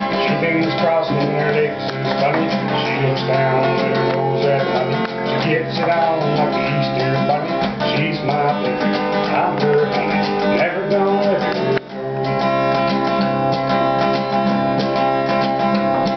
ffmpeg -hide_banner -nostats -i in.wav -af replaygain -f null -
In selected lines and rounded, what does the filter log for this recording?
track_gain = +0.0 dB
track_peak = 0.359